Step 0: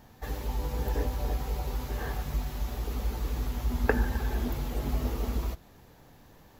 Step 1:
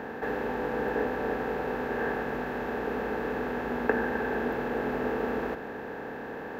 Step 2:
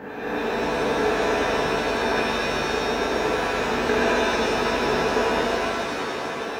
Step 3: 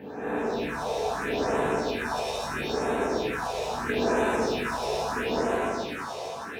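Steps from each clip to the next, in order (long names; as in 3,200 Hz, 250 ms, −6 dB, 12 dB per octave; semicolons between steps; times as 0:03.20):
compressor on every frequency bin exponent 0.4; three-way crossover with the lows and the highs turned down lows −24 dB, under 160 Hz, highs −19 dB, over 3,000 Hz; level −1 dB
reverb with rising layers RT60 1.9 s, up +7 semitones, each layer −2 dB, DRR −7 dB; level −2.5 dB
stylus tracing distortion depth 0.033 ms; all-pass phaser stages 4, 0.76 Hz, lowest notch 250–4,800 Hz; high-pass filter 58 Hz; level −3 dB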